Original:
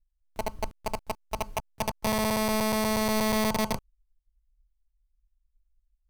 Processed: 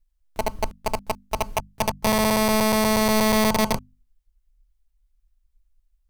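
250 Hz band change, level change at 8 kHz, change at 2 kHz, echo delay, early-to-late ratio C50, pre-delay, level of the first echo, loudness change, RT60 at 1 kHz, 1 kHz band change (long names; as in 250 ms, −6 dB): +6.0 dB, +6.5 dB, +6.5 dB, no echo audible, no reverb audible, no reverb audible, no echo audible, +6.5 dB, no reverb audible, +6.5 dB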